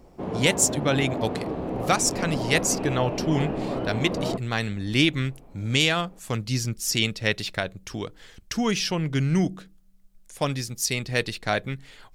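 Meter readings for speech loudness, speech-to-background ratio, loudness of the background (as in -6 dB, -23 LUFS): -25.5 LUFS, 4.5 dB, -30.0 LUFS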